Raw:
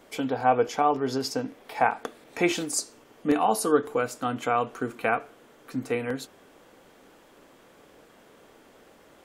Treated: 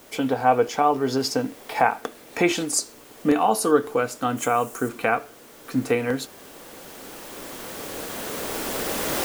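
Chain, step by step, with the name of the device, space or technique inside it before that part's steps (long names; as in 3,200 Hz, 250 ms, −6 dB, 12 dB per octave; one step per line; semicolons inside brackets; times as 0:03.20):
cheap recorder with automatic gain (white noise bed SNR 28 dB; camcorder AGC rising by 7 dB per second)
0:04.37–0:04.89: high shelf with overshoot 5,700 Hz +9.5 dB, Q 1.5
level +3 dB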